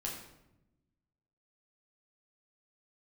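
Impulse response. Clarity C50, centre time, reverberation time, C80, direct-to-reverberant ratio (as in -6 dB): 4.0 dB, 41 ms, 0.90 s, 7.0 dB, -3.5 dB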